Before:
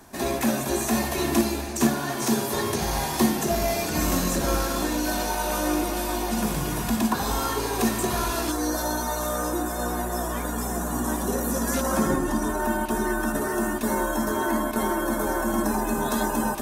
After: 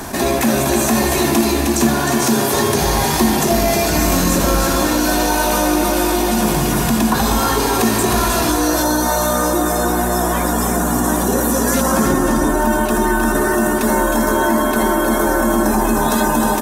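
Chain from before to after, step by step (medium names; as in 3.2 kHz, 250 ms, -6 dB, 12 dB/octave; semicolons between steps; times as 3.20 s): delay 311 ms -6 dB; level flattener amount 50%; trim +4.5 dB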